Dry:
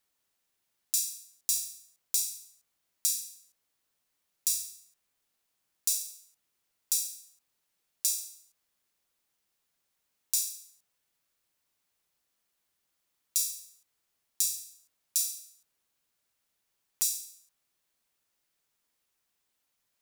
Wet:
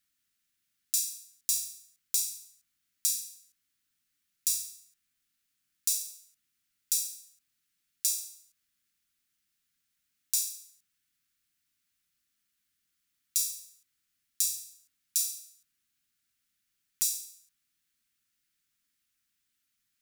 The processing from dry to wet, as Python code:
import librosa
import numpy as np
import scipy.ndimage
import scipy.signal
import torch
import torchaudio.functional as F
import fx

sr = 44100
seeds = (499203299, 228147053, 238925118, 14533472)

y = fx.band_shelf(x, sr, hz=640.0, db=-16.0, octaves=1.7)